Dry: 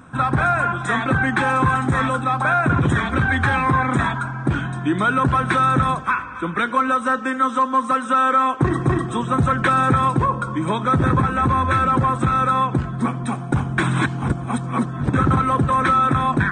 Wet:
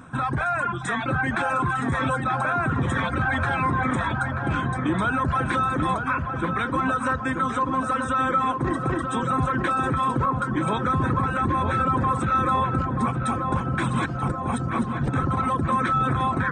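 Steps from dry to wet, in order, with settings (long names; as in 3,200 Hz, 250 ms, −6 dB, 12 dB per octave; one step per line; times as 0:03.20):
reverb reduction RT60 0.87 s
brickwall limiter −17 dBFS, peak gain reduction 10 dB
on a send: feedback echo with a low-pass in the loop 934 ms, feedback 74%, low-pass 1,700 Hz, level −5 dB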